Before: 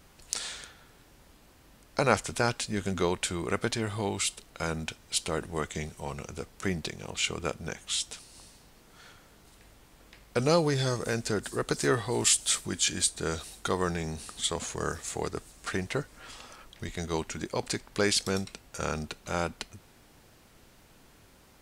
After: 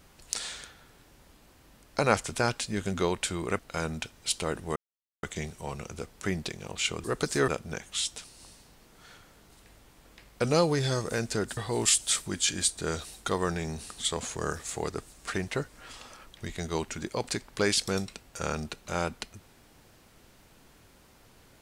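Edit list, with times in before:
0:03.59–0:04.45: remove
0:05.62: splice in silence 0.47 s
0:11.52–0:11.96: move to 0:07.43

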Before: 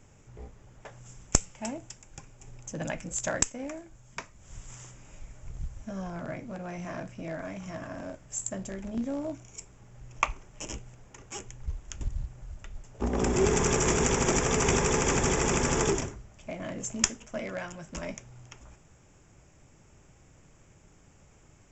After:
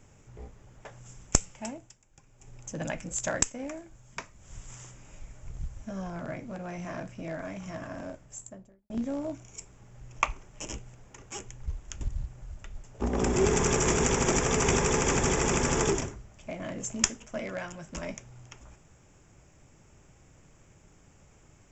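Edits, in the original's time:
0:01.54–0:02.63: duck −12.5 dB, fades 0.43 s
0:07.99–0:08.90: fade out and dull

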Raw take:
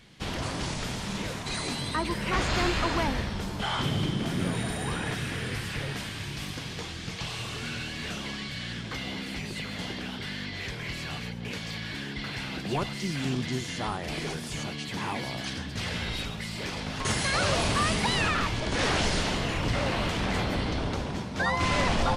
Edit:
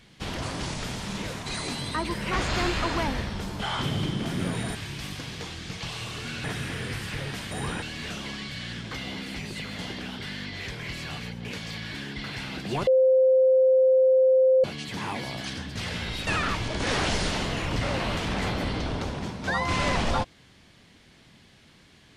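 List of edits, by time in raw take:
0:04.75–0:05.06: swap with 0:06.13–0:07.82
0:12.87–0:14.64: beep over 521 Hz −15.5 dBFS
0:16.27–0:18.19: remove

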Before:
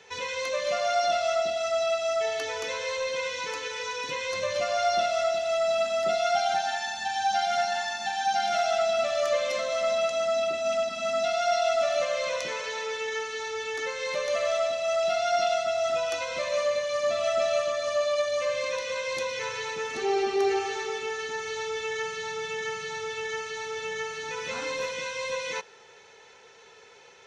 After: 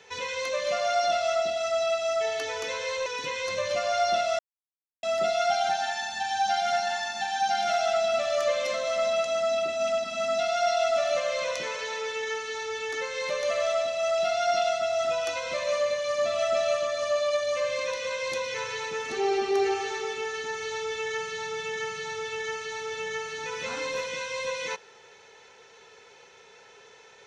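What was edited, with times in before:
0:03.06–0:03.91: remove
0:05.24–0:05.88: silence

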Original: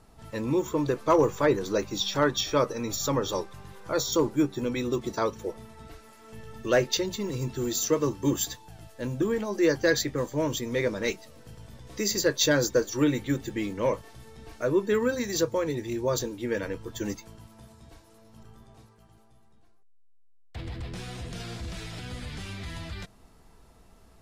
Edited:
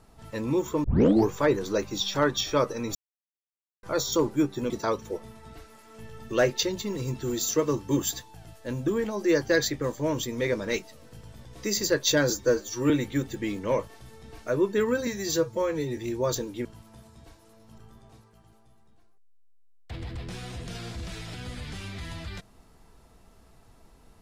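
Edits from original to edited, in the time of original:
0:00.84: tape start 0.47 s
0:02.95–0:03.83: silence
0:04.70–0:05.04: remove
0:12.64–0:13.04: time-stretch 1.5×
0:15.21–0:15.81: time-stretch 1.5×
0:16.49–0:17.30: remove

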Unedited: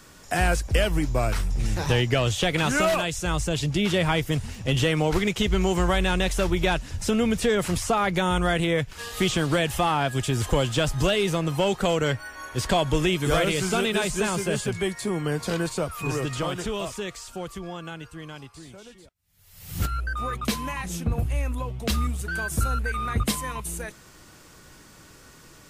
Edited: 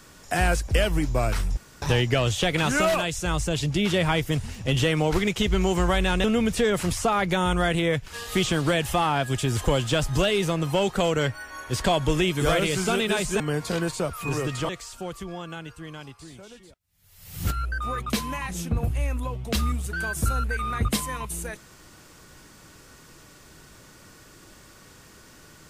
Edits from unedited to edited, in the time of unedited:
0:01.57–0:01.82: fill with room tone
0:06.24–0:07.09: remove
0:14.25–0:15.18: remove
0:16.47–0:17.04: remove

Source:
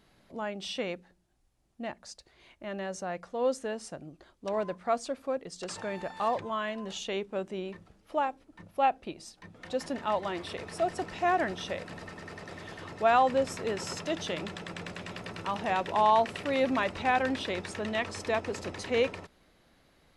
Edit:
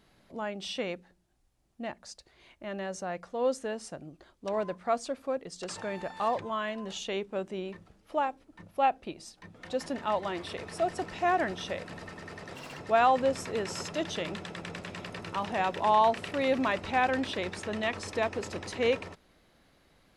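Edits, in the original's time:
0:12.55–0:12.89: play speed 152%

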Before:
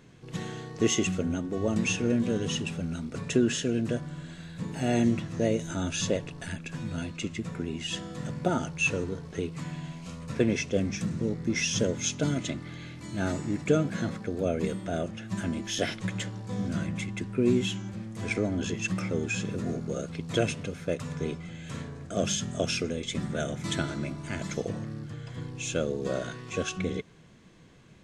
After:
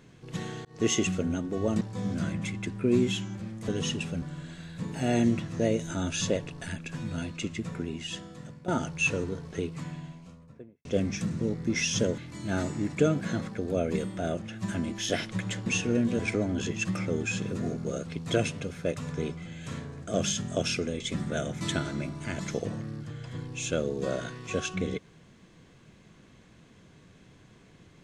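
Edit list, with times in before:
0:00.65–0:00.97: fade in equal-power
0:01.81–0:02.34: swap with 0:16.35–0:18.22
0:02.88–0:04.02: remove
0:07.55–0:08.48: fade out, to −16 dB
0:09.37–0:10.65: fade out and dull
0:11.98–0:12.87: remove

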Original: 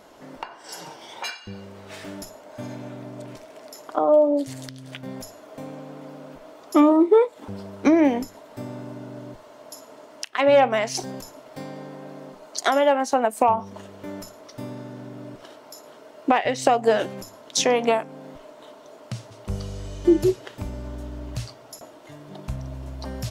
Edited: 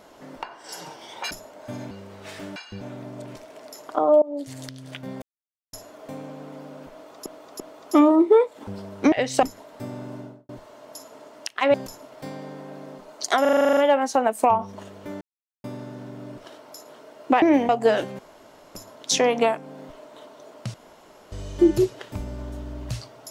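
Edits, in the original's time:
0:01.31–0:01.56: swap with 0:02.21–0:02.81
0:04.22–0:04.64: fade in, from −23.5 dB
0:05.22: splice in silence 0.51 s
0:06.41–0:06.75: repeat, 3 plays
0:07.93–0:08.20: swap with 0:16.40–0:16.71
0:08.94–0:09.26: fade out and dull
0:10.51–0:11.08: remove
0:12.75: stutter 0.04 s, 10 plays
0:14.19–0:14.62: silence
0:17.21: splice in room tone 0.56 s
0:19.20–0:19.78: fill with room tone

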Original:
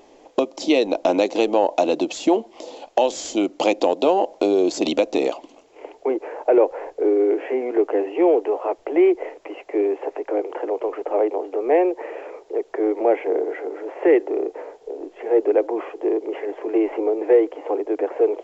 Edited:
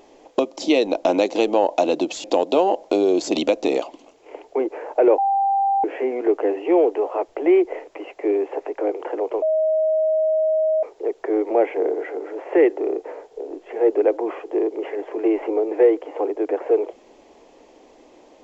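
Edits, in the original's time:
0:02.24–0:03.74: remove
0:06.68–0:07.34: beep over 789 Hz −16 dBFS
0:10.92–0:12.33: beep over 630 Hz −16 dBFS

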